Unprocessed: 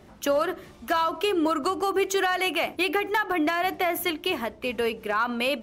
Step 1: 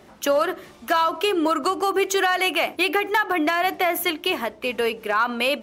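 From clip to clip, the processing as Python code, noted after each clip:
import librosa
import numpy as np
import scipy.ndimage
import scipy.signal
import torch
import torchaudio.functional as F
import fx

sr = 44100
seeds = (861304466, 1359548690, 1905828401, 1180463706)

y = fx.low_shelf(x, sr, hz=170.0, db=-11.5)
y = y * librosa.db_to_amplitude(4.5)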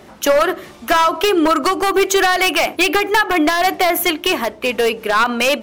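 y = np.minimum(x, 2.0 * 10.0 ** (-16.0 / 20.0) - x)
y = y * librosa.db_to_amplitude(7.5)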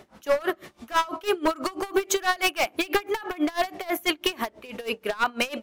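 y = x * 10.0 ** (-23 * (0.5 - 0.5 * np.cos(2.0 * np.pi * 6.1 * np.arange(len(x)) / sr)) / 20.0)
y = y * librosa.db_to_amplitude(-5.0)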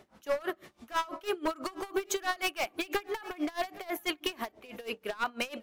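y = x + 10.0 ** (-20.5 / 20.0) * np.pad(x, (int(816 * sr / 1000.0), 0))[:len(x)]
y = y * librosa.db_to_amplitude(-8.0)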